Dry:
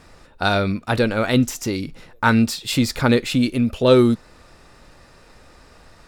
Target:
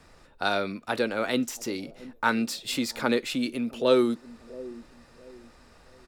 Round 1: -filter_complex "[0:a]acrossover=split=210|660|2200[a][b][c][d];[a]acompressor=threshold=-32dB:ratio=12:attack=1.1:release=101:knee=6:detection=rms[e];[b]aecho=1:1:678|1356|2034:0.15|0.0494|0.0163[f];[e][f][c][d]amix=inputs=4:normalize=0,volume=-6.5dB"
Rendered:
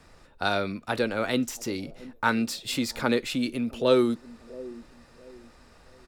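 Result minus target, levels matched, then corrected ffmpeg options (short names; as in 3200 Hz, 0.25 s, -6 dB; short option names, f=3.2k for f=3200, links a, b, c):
compressor: peak gain reduction -10 dB
-filter_complex "[0:a]acrossover=split=210|660|2200[a][b][c][d];[a]acompressor=threshold=-43dB:ratio=12:attack=1.1:release=101:knee=6:detection=rms[e];[b]aecho=1:1:678|1356|2034:0.15|0.0494|0.0163[f];[e][f][c][d]amix=inputs=4:normalize=0,volume=-6.5dB"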